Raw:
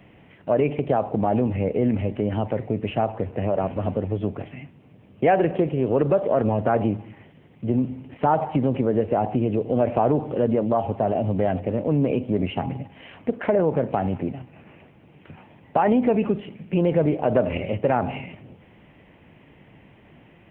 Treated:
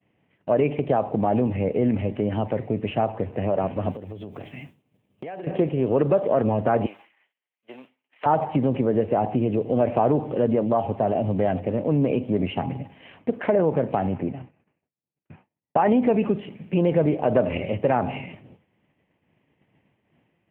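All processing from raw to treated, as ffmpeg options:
-filter_complex "[0:a]asettb=1/sr,asplit=3[a][b][c];[a]atrim=end=3.914[d];[b]atrim=start=3.91:end=5.47,asetpts=PTS-STARTPTS,afade=t=in:d=0.004:c=qsin,afade=t=out:st=1.556:d=0.004:c=qsin,bass=f=250:g=-1,treble=f=4k:g=15,acompressor=threshold=-31dB:ratio=16:attack=3.2:release=140:knee=1:detection=peak[e];[c]atrim=start=5.466[f];[d][e]acrossfade=d=0.004:c1=hsin:c2=qsin[g];[g][f]acrossfade=d=0.004:c1=qsin:c2=hsin,asettb=1/sr,asplit=3[h][i][j];[h]atrim=end=6.864[k];[i]atrim=start=6.86:end=8.26,asetpts=PTS-STARTPTS,afade=t=in:d=0.004:c=qsin,afade=t=out:st=1.396:d=0.004:c=qsin,highpass=1.3k,acontrast=22[l];[j]atrim=start=8.256[m];[k][l]acrossfade=d=0.004:c1=hsin:c2=qsin[n];[n][m]acrossfade=d=0.004:c1=qsin:c2=hsin,asettb=1/sr,asplit=3[o][p][q];[o]atrim=end=14.074[r];[p]atrim=start=14.07:end=15.85,asetpts=PTS-STARTPTS,afade=t=in:d=0.004:c=qsin,afade=t=out:st=1.776:d=0.004:c=qsin,lowpass=2.9k,agate=range=-33dB:threshold=-44dB:ratio=3:release=100:detection=peak[s];[q]atrim=start=15.846[t];[r][s]acrossfade=d=0.004:c1=hsin:c2=qsin[u];[u][t]acrossfade=d=0.004:c1=qsin:c2=hsin,highpass=79,bandreject=f=1.4k:w=25,agate=range=-33dB:threshold=-40dB:ratio=3:detection=peak"

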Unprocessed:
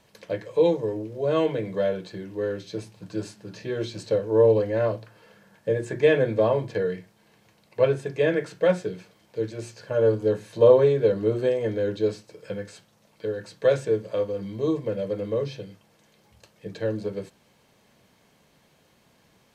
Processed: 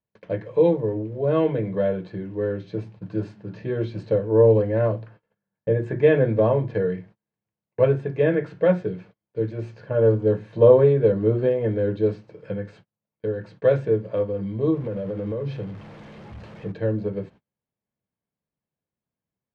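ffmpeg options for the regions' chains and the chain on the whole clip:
-filter_complex "[0:a]asettb=1/sr,asplit=3[a][b][c];[a]atrim=end=14.744[d];[b]atrim=start=14.74:end=16.72,asetpts=PTS-STARTPTS,afade=t=in:d=0.004:c=qsin,afade=t=out:st=1.976:d=0.004:c=qsin,aeval=exprs='val(0)+0.5*0.0106*sgn(val(0))':c=same,acompressor=threshold=-28dB:ratio=4:attack=3.2:release=140:knee=1:detection=peak[e];[c]atrim=start=16.716[f];[d][e]acrossfade=d=0.004:c1=hsin:c2=qsin[g];[g][f]acrossfade=d=0.004:c1=qsin:c2=hsin,agate=range=-32dB:threshold=-49dB:ratio=16:detection=peak,lowpass=2.3k,equalizer=f=90:w=0.35:g=7.5"

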